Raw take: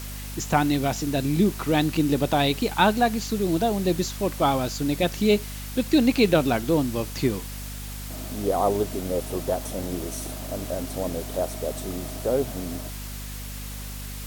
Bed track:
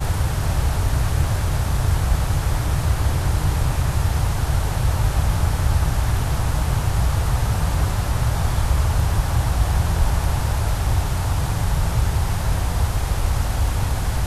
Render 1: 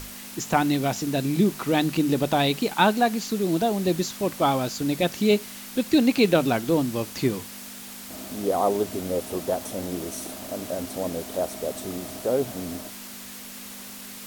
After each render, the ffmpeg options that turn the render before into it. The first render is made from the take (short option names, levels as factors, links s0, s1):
-af "bandreject=f=50:t=h:w=6,bandreject=f=100:t=h:w=6,bandreject=f=150:t=h:w=6"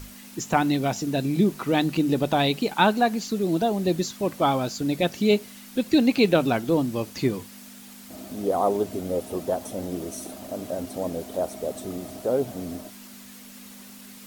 -af "afftdn=nr=7:nf=-40"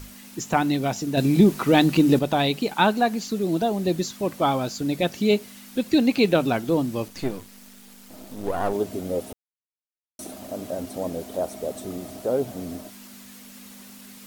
-filter_complex "[0:a]asettb=1/sr,asplit=3[s0][s1][s2];[s0]atrim=end=1.174[s3];[s1]atrim=start=1.17:end=2.19,asetpts=PTS-STARTPTS,afade=t=in:d=0.004:c=qsin,afade=t=out:st=1.016:d=0.004:c=qsin,acontrast=38[s4];[s2]atrim=start=2.186[s5];[s3][s4]acrossfade=d=0.004:c1=hsin:c2=qsin[s6];[s6][s5]acrossfade=d=0.004:c1=qsin:c2=hsin,asettb=1/sr,asplit=3[s7][s8][s9];[s7]atrim=end=7.084[s10];[s8]atrim=start=7.08:end=8.73,asetpts=PTS-STARTPTS,afade=t=in:d=0.004:c=qsin,afade=t=out:st=1.646:d=0.004:c=qsin,aeval=exprs='if(lt(val(0),0),0.251*val(0),val(0))':c=same[s11];[s9]atrim=start=8.726[s12];[s10][s11]acrossfade=d=0.004:c1=hsin:c2=qsin[s13];[s13][s12]acrossfade=d=0.004:c1=qsin:c2=hsin,asplit=3[s14][s15][s16];[s14]atrim=end=9.33,asetpts=PTS-STARTPTS,afade=t=out:st=9.326:d=0.004:c=hsin[s17];[s15]atrim=start=9.33:end=10.19,asetpts=PTS-STARTPTS,volume=0[s18];[s16]atrim=start=10.19,asetpts=PTS-STARTPTS,afade=t=in:d=0.004:c=hsin[s19];[s17][s18][s19]concat=n=3:v=0:a=1"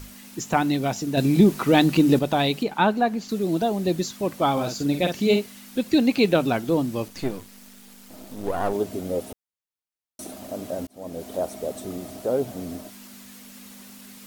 -filter_complex "[0:a]asettb=1/sr,asplit=3[s0][s1][s2];[s0]atrim=end=2.634[s3];[s1]atrim=start=2.63:end=3.29,asetpts=PTS-STARTPTS,afade=t=in:d=0.004:c=qsin,afade=t=out:st=0.656:d=0.004:c=qsin,highshelf=f=3400:g=-10[s4];[s2]atrim=start=3.286[s5];[s3][s4]acrossfade=d=0.004:c1=hsin:c2=qsin[s6];[s6][s5]acrossfade=d=0.004:c1=qsin:c2=hsin,asettb=1/sr,asplit=3[s7][s8][s9];[s7]atrim=end=4.524[s10];[s8]atrim=start=4.52:end=5.46,asetpts=PTS-STARTPTS,afade=t=in:d=0.004:c=qsin,afade=t=out:st=0.936:d=0.004:c=qsin,asplit=2[s11][s12];[s12]adelay=49,volume=0.501[s13];[s11][s13]amix=inputs=2:normalize=0,atrim=end_sample=41454[s14];[s9]atrim=start=5.456[s15];[s10][s14]acrossfade=d=0.004:c1=hsin:c2=qsin[s16];[s16][s15]acrossfade=d=0.004:c1=qsin:c2=hsin,asplit=2[s17][s18];[s17]atrim=end=10.87,asetpts=PTS-STARTPTS,afade=t=out:st=10.866:d=0.004:c=hsin[s19];[s18]atrim=start=10.87,asetpts=PTS-STARTPTS,afade=t=in:d=0.42[s20];[s19][s20]concat=n=2:v=0:a=1"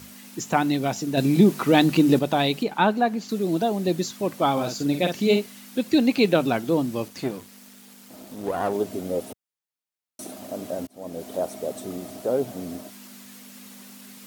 -af "highpass=110"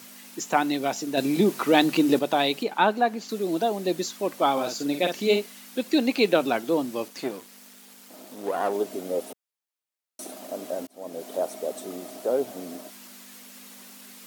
-af "highpass=300"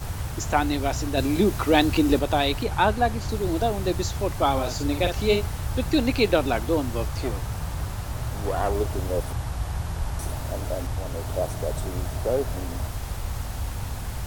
-filter_complex "[1:a]volume=0.316[s0];[0:a][s0]amix=inputs=2:normalize=0"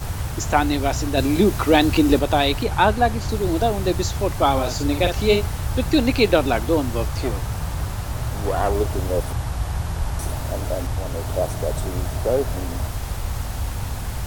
-af "volume=1.58,alimiter=limit=0.794:level=0:latency=1"